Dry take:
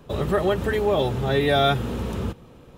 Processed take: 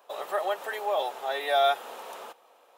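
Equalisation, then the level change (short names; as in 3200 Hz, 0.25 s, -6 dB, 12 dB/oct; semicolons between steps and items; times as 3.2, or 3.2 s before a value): ladder high-pass 600 Hz, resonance 45%; high shelf 10000 Hz +8.5 dB; +2.5 dB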